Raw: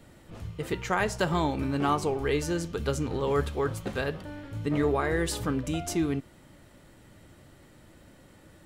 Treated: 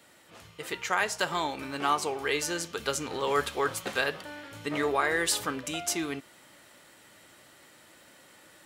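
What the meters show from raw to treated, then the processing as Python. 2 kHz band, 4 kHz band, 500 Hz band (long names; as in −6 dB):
+4.0 dB, +5.5 dB, −3.0 dB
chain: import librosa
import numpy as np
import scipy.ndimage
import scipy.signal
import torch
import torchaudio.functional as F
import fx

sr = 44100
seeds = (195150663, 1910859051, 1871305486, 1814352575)

y = fx.highpass(x, sr, hz=1300.0, slope=6)
y = fx.rider(y, sr, range_db=5, speed_s=2.0)
y = y * librosa.db_to_amplitude(6.0)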